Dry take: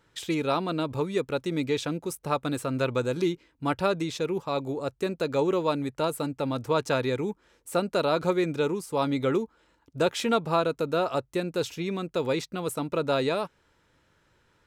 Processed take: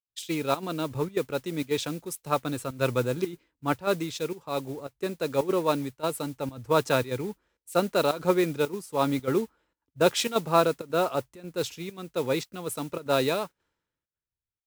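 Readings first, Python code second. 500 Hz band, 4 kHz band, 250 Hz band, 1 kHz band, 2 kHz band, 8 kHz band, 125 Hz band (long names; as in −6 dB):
0.0 dB, +1.0 dB, −1.5 dB, +0.5 dB, 0.0 dB, +3.5 dB, −1.0 dB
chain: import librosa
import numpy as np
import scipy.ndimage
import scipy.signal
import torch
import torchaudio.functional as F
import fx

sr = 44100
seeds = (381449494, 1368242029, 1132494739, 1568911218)

y = fx.volume_shaper(x, sr, bpm=111, per_beat=1, depth_db=-14, release_ms=82.0, shape='slow start')
y = fx.mod_noise(y, sr, seeds[0], snr_db=19)
y = fx.band_widen(y, sr, depth_pct=100)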